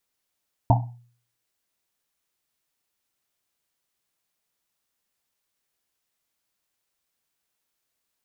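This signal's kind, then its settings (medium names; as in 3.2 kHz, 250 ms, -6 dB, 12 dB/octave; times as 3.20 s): Risset drum, pitch 120 Hz, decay 0.51 s, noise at 800 Hz, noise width 250 Hz, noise 35%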